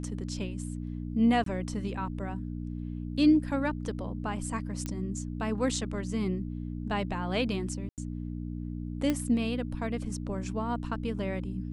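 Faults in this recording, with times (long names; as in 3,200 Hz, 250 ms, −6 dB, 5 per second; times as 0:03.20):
mains hum 60 Hz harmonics 5 −36 dBFS
0:01.44–0:01.46: drop-out 23 ms
0:04.86: click −20 dBFS
0:07.89–0:07.98: drop-out 88 ms
0:09.10: click −15 dBFS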